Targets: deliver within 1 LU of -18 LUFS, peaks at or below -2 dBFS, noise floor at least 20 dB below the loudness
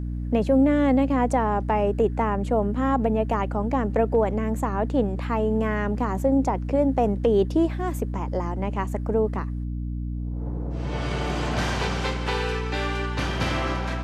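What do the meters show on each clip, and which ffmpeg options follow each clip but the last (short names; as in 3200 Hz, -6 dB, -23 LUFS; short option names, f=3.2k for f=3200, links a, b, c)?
hum 60 Hz; harmonics up to 300 Hz; hum level -27 dBFS; loudness -24.5 LUFS; peak -9.5 dBFS; loudness target -18.0 LUFS
-> -af "bandreject=f=60:t=h:w=4,bandreject=f=120:t=h:w=4,bandreject=f=180:t=h:w=4,bandreject=f=240:t=h:w=4,bandreject=f=300:t=h:w=4"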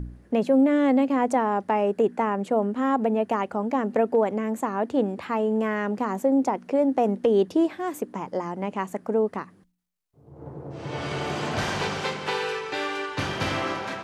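hum none; loudness -25.0 LUFS; peak -11.0 dBFS; loudness target -18.0 LUFS
-> -af "volume=7dB"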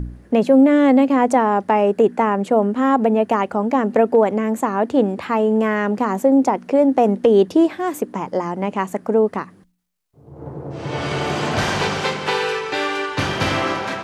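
loudness -18.0 LUFS; peak -4.0 dBFS; noise floor -48 dBFS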